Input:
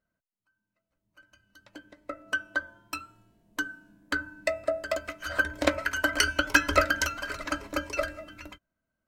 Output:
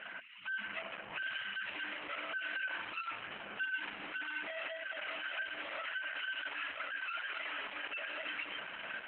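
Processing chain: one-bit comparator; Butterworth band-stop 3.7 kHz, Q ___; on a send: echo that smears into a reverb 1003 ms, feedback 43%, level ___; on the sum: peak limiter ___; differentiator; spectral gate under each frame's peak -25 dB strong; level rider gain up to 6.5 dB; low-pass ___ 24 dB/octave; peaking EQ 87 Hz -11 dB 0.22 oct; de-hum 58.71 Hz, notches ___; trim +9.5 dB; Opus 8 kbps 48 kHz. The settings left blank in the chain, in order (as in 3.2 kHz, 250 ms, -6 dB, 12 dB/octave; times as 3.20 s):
2.6, -11.5 dB, -33 dBFS, 5.5 kHz, 6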